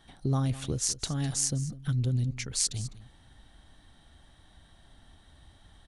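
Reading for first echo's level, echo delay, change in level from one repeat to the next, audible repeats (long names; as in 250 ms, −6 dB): −16.5 dB, 204 ms, repeats not evenly spaced, 1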